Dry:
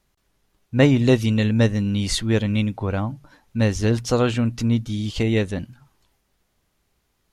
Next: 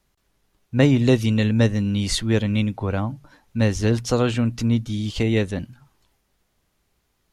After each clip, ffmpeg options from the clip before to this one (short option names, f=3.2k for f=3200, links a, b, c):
-filter_complex "[0:a]acrossover=split=380|3000[a][b][c];[b]acompressor=threshold=-19dB:ratio=6[d];[a][d][c]amix=inputs=3:normalize=0"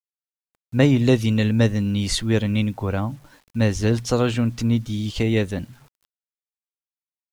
-af "acrusher=bits=8:mix=0:aa=0.000001"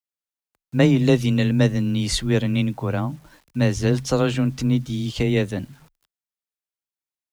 -af "afreqshift=15"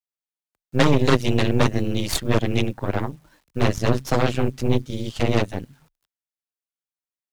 -af "aeval=exprs='0.668*(cos(1*acos(clip(val(0)/0.668,-1,1)))-cos(1*PI/2))+0.168*(cos(4*acos(clip(val(0)/0.668,-1,1)))-cos(4*PI/2))+0.335*(cos(6*acos(clip(val(0)/0.668,-1,1)))-cos(6*PI/2))+0.0237*(cos(7*acos(clip(val(0)/0.668,-1,1)))-cos(7*PI/2))':c=same,volume=-3.5dB"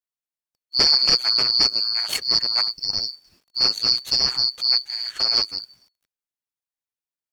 -af "afftfilt=real='real(if(lt(b,272),68*(eq(floor(b/68),0)*1+eq(floor(b/68),1)*2+eq(floor(b/68),2)*3+eq(floor(b/68),3)*0)+mod(b,68),b),0)':imag='imag(if(lt(b,272),68*(eq(floor(b/68),0)*1+eq(floor(b/68),1)*2+eq(floor(b/68),2)*3+eq(floor(b/68),3)*0)+mod(b,68),b),0)':win_size=2048:overlap=0.75,volume=-2dB"